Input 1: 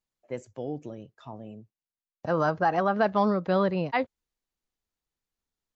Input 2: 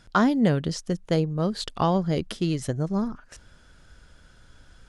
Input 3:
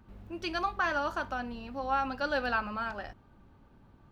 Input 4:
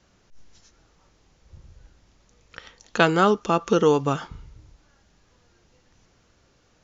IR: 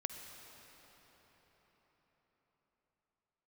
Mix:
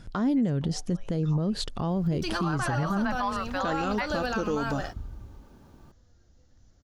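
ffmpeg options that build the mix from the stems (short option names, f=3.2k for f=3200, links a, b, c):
-filter_complex "[0:a]highpass=f=980:w=0.5412,highpass=f=980:w=1.3066,dynaudnorm=f=130:g=9:m=7.5dB,adelay=50,volume=-4dB[a];[1:a]acompressor=threshold=-24dB:ratio=6,volume=0dB[b];[2:a]bass=f=250:g=-9,treble=f=4k:g=13,alimiter=level_in=1.5dB:limit=-24dB:level=0:latency=1,volume=-1.5dB,adelay=1800,volume=2.5dB[c];[3:a]equalizer=f=160:t=o:w=0.67:g=-11,equalizer=f=400:t=o:w=0.67:g=-10,equalizer=f=1k:t=o:w=0.67:g=-9,equalizer=f=2.5k:t=o:w=0.67:g=-12,adelay=650,volume=-5.5dB[d];[a][b][c][d]amix=inputs=4:normalize=0,lowshelf=f=490:g=11,alimiter=limit=-19dB:level=0:latency=1:release=85"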